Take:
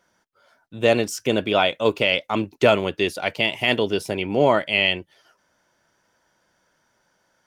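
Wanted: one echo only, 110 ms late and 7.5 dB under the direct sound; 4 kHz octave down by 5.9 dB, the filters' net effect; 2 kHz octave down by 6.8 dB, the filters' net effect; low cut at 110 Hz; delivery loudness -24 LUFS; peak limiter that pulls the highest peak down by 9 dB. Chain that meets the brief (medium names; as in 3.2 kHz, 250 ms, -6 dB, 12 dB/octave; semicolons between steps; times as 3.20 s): high-pass 110 Hz; peaking EQ 2 kHz -7.5 dB; peaking EQ 4 kHz -4.5 dB; peak limiter -14 dBFS; delay 110 ms -7.5 dB; trim +2 dB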